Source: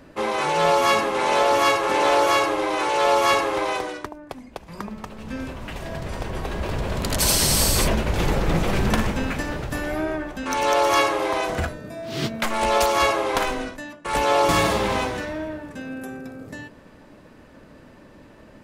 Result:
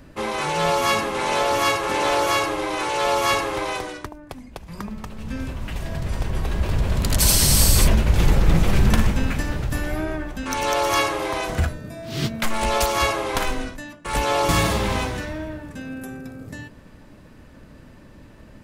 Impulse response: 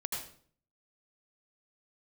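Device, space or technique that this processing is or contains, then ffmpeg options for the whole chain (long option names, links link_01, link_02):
smiley-face EQ: -af "lowshelf=frequency=190:gain=8.5,equalizer=frequency=490:width_type=o:width=2.6:gain=-4,highshelf=frequency=7800:gain=4.5"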